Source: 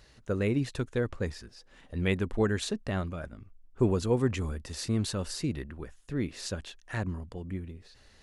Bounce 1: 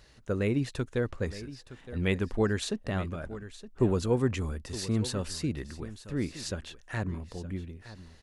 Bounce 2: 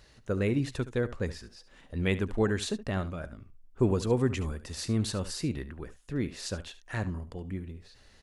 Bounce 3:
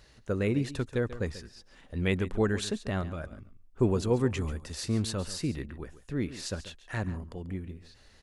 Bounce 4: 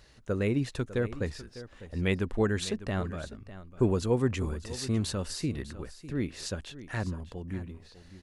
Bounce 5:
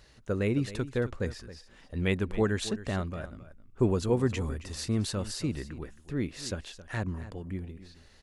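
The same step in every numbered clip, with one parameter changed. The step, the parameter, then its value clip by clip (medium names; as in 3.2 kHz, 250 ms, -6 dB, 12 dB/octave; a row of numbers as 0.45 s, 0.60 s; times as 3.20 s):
delay, time: 917 ms, 72 ms, 139 ms, 601 ms, 270 ms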